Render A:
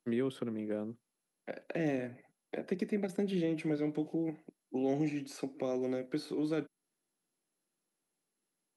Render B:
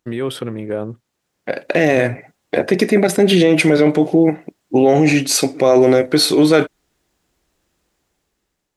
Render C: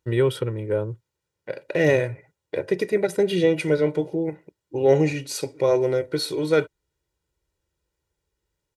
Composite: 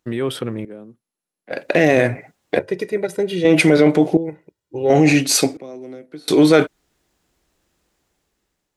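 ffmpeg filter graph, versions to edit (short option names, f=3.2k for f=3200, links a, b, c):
-filter_complex "[0:a]asplit=2[a][b];[2:a]asplit=2[c][d];[1:a]asplit=5[e][f][g][h][i];[e]atrim=end=0.652[j];[a]atrim=start=0.648:end=1.512[k];[f]atrim=start=1.508:end=2.592[l];[c]atrim=start=2.588:end=3.452[m];[g]atrim=start=3.448:end=4.172[n];[d]atrim=start=4.168:end=4.902[o];[h]atrim=start=4.898:end=5.572[p];[b]atrim=start=5.568:end=6.282[q];[i]atrim=start=6.278[r];[j][k]acrossfade=d=0.004:c1=hsin:c2=hsin[s];[s][l]acrossfade=d=0.004:c1=hsin:c2=hsin[t];[t][m]acrossfade=d=0.004:c1=hsin:c2=hsin[u];[u][n]acrossfade=d=0.004:c1=hsin:c2=hsin[v];[v][o]acrossfade=d=0.004:c1=hsin:c2=hsin[w];[w][p]acrossfade=d=0.004:c1=hsin:c2=hsin[x];[x][q]acrossfade=d=0.004:c1=hsin:c2=hsin[y];[y][r]acrossfade=d=0.004:c1=hsin:c2=hsin"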